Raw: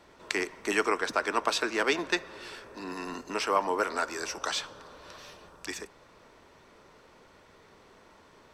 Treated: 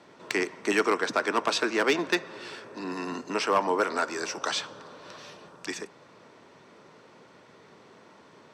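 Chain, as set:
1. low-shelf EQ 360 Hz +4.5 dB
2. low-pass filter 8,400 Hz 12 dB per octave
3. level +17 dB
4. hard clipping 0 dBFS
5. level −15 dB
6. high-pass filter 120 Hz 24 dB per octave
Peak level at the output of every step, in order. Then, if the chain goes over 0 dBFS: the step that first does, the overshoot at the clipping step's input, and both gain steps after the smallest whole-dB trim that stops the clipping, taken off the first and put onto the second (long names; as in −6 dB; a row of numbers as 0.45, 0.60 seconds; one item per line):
−10.0, −10.0, +7.0, 0.0, −15.0, −11.5 dBFS
step 3, 7.0 dB
step 3 +10 dB, step 5 −8 dB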